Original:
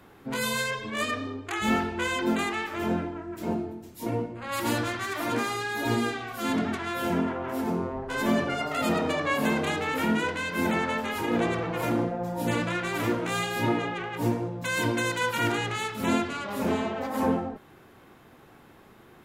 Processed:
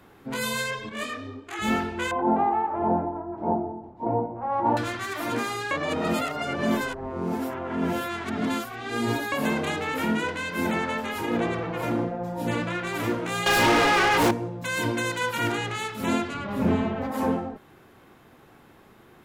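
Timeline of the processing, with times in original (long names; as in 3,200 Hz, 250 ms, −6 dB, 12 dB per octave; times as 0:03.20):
0:00.89–0:01.59: micro pitch shift up and down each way 43 cents
0:02.11–0:04.77: low-pass with resonance 830 Hz, resonance Q 6.1
0:05.71–0:09.32: reverse
0:11.37–0:12.87: high-shelf EQ 5,500 Hz −6 dB
0:13.46–0:14.31: mid-hump overdrive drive 32 dB, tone 5,300 Hz, clips at −13 dBFS
0:16.34–0:17.12: bass and treble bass +10 dB, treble −9 dB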